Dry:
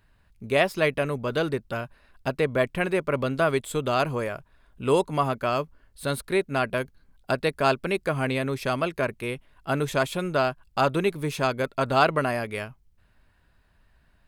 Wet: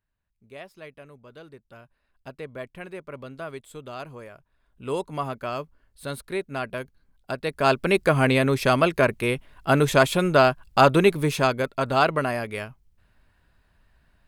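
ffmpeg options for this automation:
-af "volume=2.11,afade=t=in:st=1.48:d=0.82:silence=0.446684,afade=t=in:st=4.35:d=0.84:silence=0.398107,afade=t=in:st=7.42:d=0.58:silence=0.266073,afade=t=out:st=11.11:d=0.6:silence=0.473151"

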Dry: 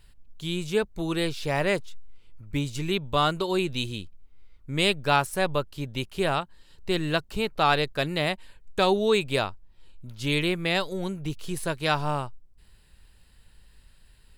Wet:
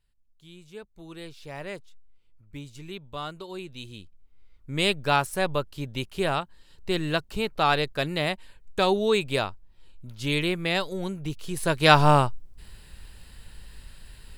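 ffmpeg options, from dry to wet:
-af "volume=3.16,afade=t=in:st=0.66:d=0.95:silence=0.473151,afade=t=in:st=3.75:d=1.15:silence=0.266073,afade=t=in:st=11.54:d=0.47:silence=0.298538"

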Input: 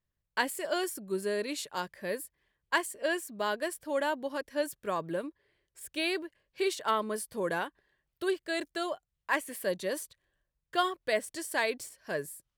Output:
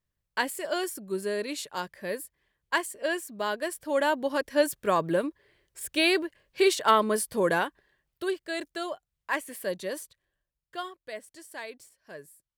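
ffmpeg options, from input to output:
-af "volume=2.51,afade=t=in:st=3.61:d=0.89:silence=0.473151,afade=t=out:st=7.32:d=1.02:silence=0.398107,afade=t=out:st=9.81:d=1.15:silence=0.316228"

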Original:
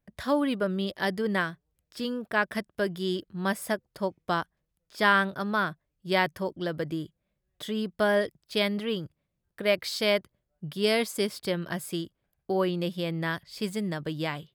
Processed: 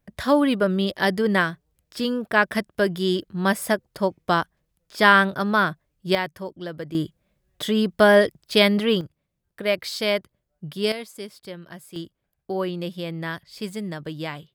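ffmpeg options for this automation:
-af "asetnsamples=n=441:p=0,asendcmd='6.15 volume volume -2dB;6.95 volume volume 9.5dB;9.01 volume volume 2dB;10.92 volume volume -8dB;11.96 volume volume 0dB',volume=2.24"

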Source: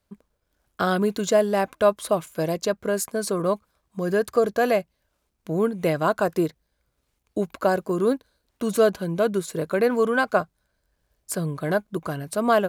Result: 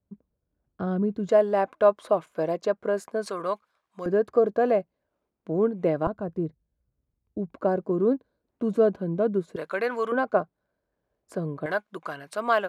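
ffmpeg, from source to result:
-af "asetnsamples=n=441:p=0,asendcmd='1.29 bandpass f 660;3.26 bandpass f 1600;4.06 bandpass f 400;6.07 bandpass f 100;7.52 bandpass f 280;9.56 bandpass f 1600;10.12 bandpass f 420;11.66 bandpass f 1600',bandpass=f=140:t=q:w=0.64:csg=0"

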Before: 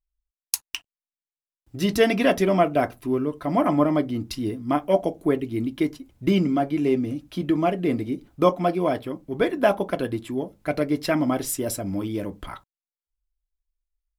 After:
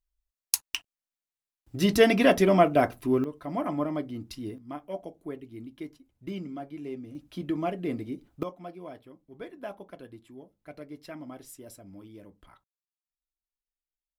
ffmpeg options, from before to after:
-af "asetnsamples=n=441:p=0,asendcmd='3.24 volume volume -9.5dB;4.58 volume volume -16dB;7.15 volume volume -8dB;8.43 volume volume -19.5dB',volume=0.944"

